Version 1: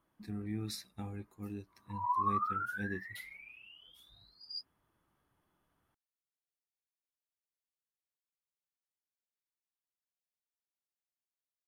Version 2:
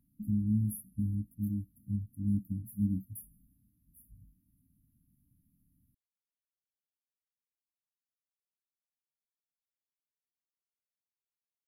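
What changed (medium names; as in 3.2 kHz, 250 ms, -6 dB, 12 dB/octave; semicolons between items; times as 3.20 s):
speech +11.0 dB; master: add brick-wall FIR band-stop 290–10000 Hz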